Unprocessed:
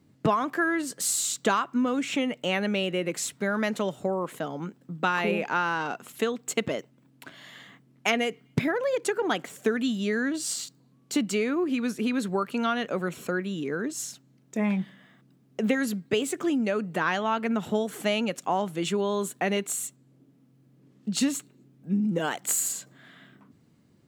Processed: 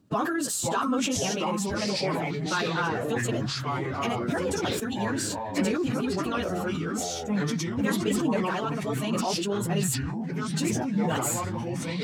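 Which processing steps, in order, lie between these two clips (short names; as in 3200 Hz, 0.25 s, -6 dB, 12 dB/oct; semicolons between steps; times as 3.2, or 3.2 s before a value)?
bell 2100 Hz -12 dB 0.23 oct; plain phase-vocoder stretch 0.5×; echoes that change speed 0.488 s, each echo -4 st, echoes 3; sustainer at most 21 dB/s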